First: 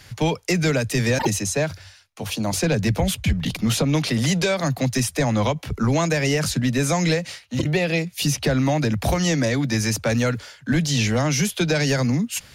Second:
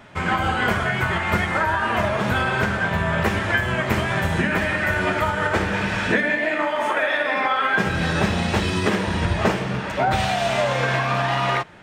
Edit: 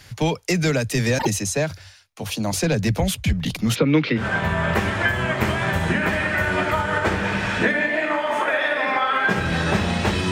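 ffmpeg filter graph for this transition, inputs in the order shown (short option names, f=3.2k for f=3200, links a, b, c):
-filter_complex "[0:a]asplit=3[a][b][c];[a]afade=t=out:st=3.74:d=0.02[d];[b]highpass=110,equalizer=f=320:t=q:w=4:g=7,equalizer=f=480:t=q:w=4:g=7,equalizer=f=700:t=q:w=4:g=-10,equalizer=f=1.4k:t=q:w=4:g=6,equalizer=f=2.2k:t=q:w=4:g=7,lowpass=f=3.6k:w=0.5412,lowpass=f=3.6k:w=1.3066,afade=t=in:st=3.74:d=0.02,afade=t=out:st=4.27:d=0.02[e];[c]afade=t=in:st=4.27:d=0.02[f];[d][e][f]amix=inputs=3:normalize=0,apad=whole_dur=10.31,atrim=end=10.31,atrim=end=4.27,asetpts=PTS-STARTPTS[g];[1:a]atrim=start=2.64:end=8.8,asetpts=PTS-STARTPTS[h];[g][h]acrossfade=d=0.12:c1=tri:c2=tri"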